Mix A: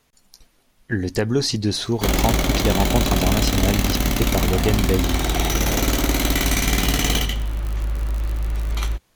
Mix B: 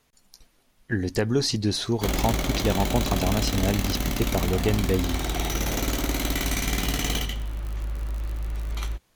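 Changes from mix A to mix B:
speech -3.0 dB; background -6.5 dB

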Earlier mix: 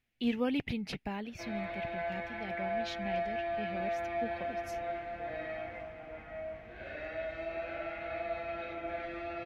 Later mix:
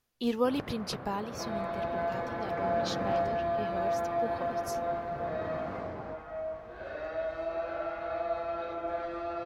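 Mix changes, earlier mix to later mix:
speech: add treble shelf 4.2 kHz +7.5 dB; first sound: unmuted; master: add FFT filter 280 Hz 0 dB, 450 Hz +7 dB, 730 Hz +4 dB, 1.1 kHz +12 dB, 2.2 kHz -9 dB, 4.7 kHz +5 dB

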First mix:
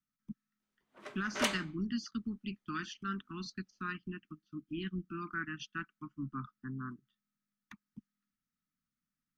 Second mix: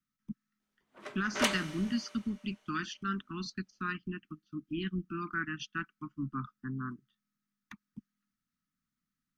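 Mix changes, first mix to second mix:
speech +3.5 dB; reverb: on, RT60 2.5 s

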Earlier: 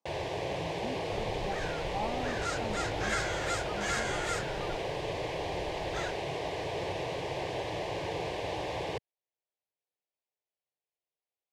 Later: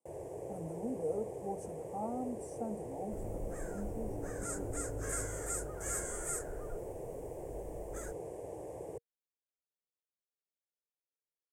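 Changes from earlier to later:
first sound -11.0 dB; second sound: entry +2.00 s; master: add FFT filter 180 Hz 0 dB, 470 Hz +6 dB, 1 kHz -8 dB, 2.1 kHz -16 dB, 4 kHz -28 dB, 8.4 kHz +11 dB

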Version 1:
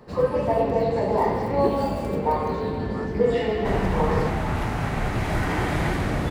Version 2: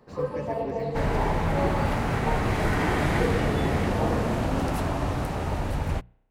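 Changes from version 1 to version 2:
first sound -8.0 dB; second sound: entry -2.70 s; master: add hum notches 60/120/180 Hz

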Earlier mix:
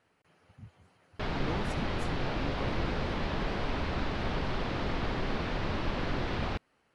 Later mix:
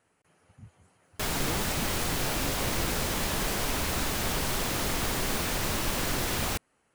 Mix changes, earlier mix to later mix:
background: remove tape spacing loss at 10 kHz 28 dB; master: add resonant high shelf 5.9 kHz +8.5 dB, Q 1.5

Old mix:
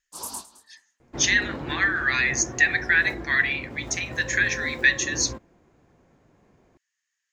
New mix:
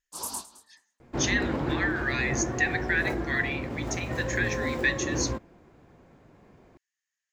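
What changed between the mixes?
speech -7.0 dB; second sound +4.5 dB

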